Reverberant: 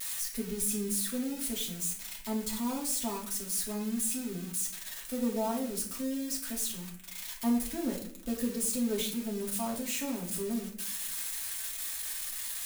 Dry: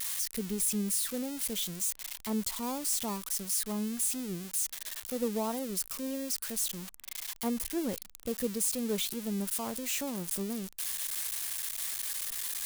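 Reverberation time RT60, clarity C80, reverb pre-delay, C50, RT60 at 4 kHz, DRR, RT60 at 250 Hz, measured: 0.60 s, 10.5 dB, 3 ms, 7.0 dB, 0.45 s, -4.0 dB, 0.95 s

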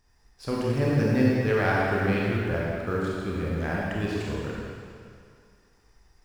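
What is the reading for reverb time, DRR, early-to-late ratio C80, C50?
2.2 s, -5.0 dB, -1.0 dB, -3.0 dB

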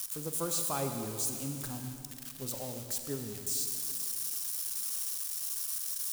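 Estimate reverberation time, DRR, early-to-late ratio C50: 2.5 s, 5.0 dB, 5.5 dB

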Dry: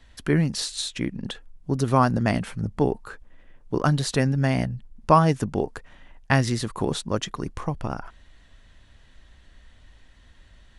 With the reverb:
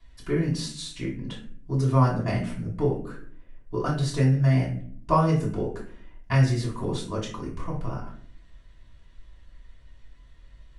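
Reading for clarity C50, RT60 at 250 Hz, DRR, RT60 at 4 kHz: 6.5 dB, 0.90 s, -7.5 dB, 0.30 s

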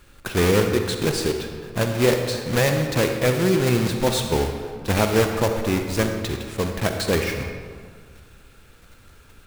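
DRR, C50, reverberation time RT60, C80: 4.5 dB, 5.0 dB, 1.8 s, 6.5 dB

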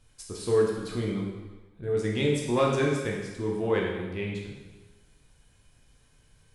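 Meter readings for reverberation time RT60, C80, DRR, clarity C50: 1.2 s, 4.5 dB, -2.0 dB, 2.0 dB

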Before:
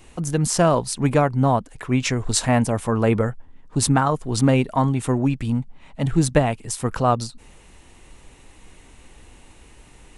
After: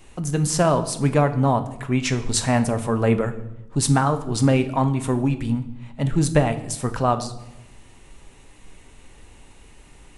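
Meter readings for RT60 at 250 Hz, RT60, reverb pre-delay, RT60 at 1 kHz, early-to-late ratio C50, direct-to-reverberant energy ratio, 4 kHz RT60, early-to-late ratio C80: 1.1 s, 0.95 s, 5 ms, 0.85 s, 13.5 dB, 8.0 dB, 0.70 s, 16.0 dB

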